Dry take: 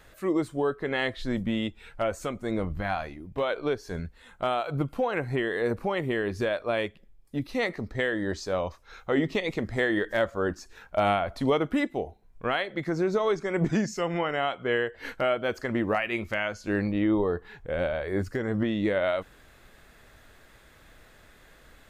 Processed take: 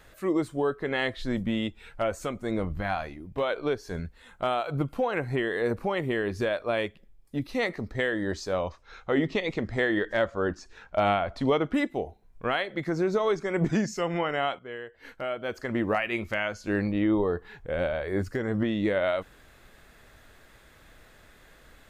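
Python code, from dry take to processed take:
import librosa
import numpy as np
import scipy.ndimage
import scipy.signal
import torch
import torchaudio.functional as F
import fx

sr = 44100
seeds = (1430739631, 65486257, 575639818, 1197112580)

y = fx.lowpass(x, sr, hz=6500.0, slope=12, at=(8.58, 11.74))
y = fx.edit(y, sr, fx.fade_in_from(start_s=14.59, length_s=1.23, curve='qua', floor_db=-13.0), tone=tone)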